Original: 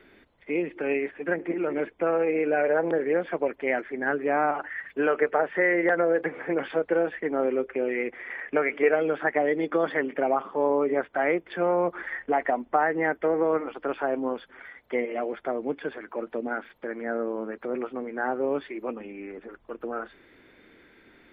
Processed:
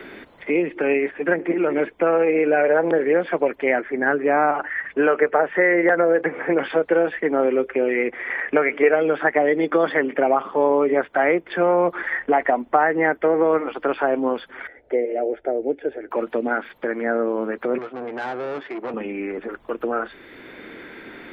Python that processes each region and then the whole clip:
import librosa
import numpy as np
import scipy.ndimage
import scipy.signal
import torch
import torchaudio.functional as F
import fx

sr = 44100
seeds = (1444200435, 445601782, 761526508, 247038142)

y = fx.chain(x, sr, fx.lowpass(hz=3000.0, slope=12),
    fx.quant_float(bits=8), at=(3.72, 6.53))
y = fx.chain(y, sr, fx.lowpass(hz=1200.0, slope=12),
    fx.fixed_phaser(hz=450.0, stages=4), at=(14.67, 16.11))
y = fx.chain(y, sr, fx.tube_stage(drive_db=35.0, bias=0.5),
    fx.bandpass_q(hz=770.0, q=0.5), at=(17.78, 18.94))
y = fx.low_shelf(y, sr, hz=170.0, db=-3.5)
y = fx.band_squash(y, sr, depth_pct=40)
y = y * 10.0 ** (6.5 / 20.0)